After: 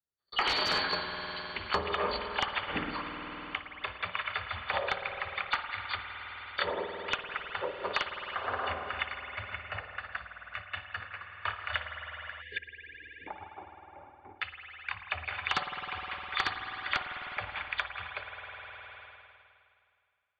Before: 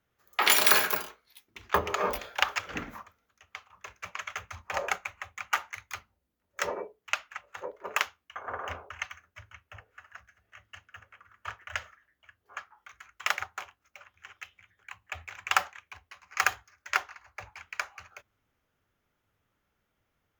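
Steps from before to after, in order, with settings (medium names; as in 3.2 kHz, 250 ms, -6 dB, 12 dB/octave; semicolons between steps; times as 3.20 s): knee-point frequency compression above 2.9 kHz 4:1; gate -53 dBFS, range -49 dB; in parallel at -3 dB: compression, threshold -38 dBFS, peak gain reduction 23.5 dB; 12.58–14.40 s: on the sum: cascade formant filter u; wavefolder -14 dBFS; distance through air 140 m; spring tank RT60 2.3 s, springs 51 ms, chirp 45 ms, DRR 6.5 dB; 12.42–13.28 s: spectral selection erased 520–1600 Hz; three bands compressed up and down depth 70%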